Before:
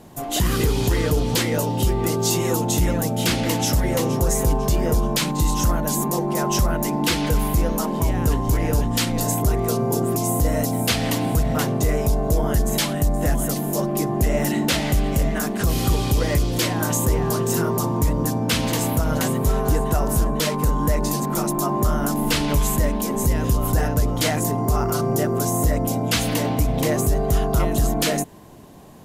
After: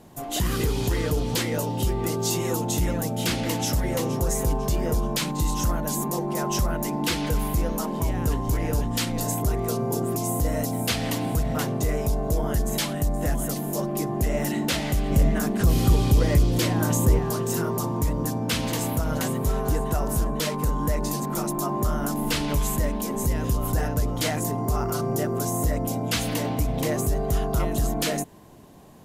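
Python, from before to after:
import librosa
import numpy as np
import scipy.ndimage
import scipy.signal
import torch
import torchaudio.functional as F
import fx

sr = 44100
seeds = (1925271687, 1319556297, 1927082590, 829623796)

y = fx.low_shelf(x, sr, hz=440.0, db=6.5, at=(15.1, 17.19))
y = F.gain(torch.from_numpy(y), -4.5).numpy()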